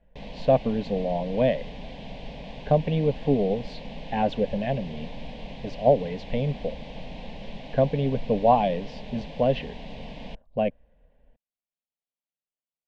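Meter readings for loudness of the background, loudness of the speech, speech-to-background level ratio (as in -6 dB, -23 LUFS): -41.0 LUFS, -26.0 LUFS, 15.0 dB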